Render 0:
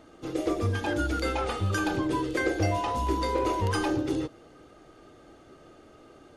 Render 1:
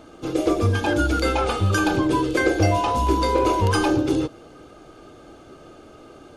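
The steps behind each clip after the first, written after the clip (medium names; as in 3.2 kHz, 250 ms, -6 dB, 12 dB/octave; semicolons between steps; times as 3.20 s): band-stop 1.9 kHz, Q 7.7; trim +7.5 dB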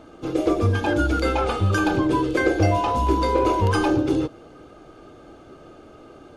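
treble shelf 3.7 kHz -7 dB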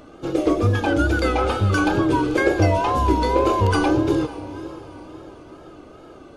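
echo that smears into a reverb 484 ms, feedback 45%, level -15 dB; wow and flutter 82 cents; trim +1.5 dB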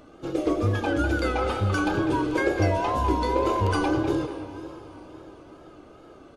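speakerphone echo 200 ms, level -8 dB; trim -5.5 dB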